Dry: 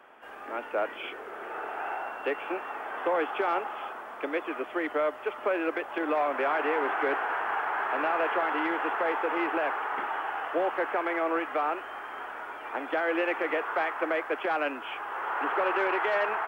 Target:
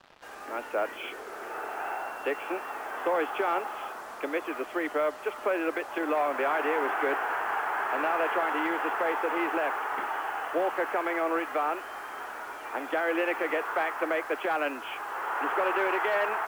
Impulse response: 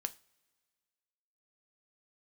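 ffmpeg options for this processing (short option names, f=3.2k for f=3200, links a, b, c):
-af "acrusher=bits=7:mix=0:aa=0.5"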